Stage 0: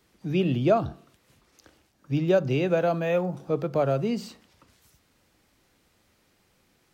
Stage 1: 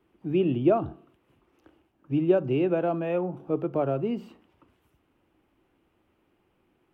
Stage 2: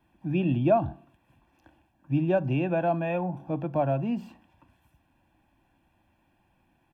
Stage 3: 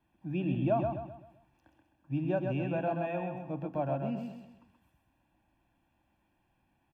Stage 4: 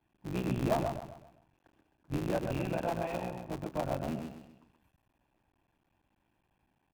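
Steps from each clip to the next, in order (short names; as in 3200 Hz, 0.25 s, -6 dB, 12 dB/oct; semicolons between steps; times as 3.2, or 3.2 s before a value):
EQ curve 210 Hz 0 dB, 340 Hz +9 dB, 500 Hz 0 dB, 900 Hz +3 dB, 1300 Hz 0 dB, 1900 Hz -5 dB, 2900 Hz -1 dB, 4200 Hz -17 dB, 6600 Hz -19 dB, 11000 Hz -12 dB; gain -4 dB
comb 1.2 ms, depth 82%
feedback echo 0.13 s, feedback 39%, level -5 dB; gain -7.5 dB
cycle switcher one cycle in 3, muted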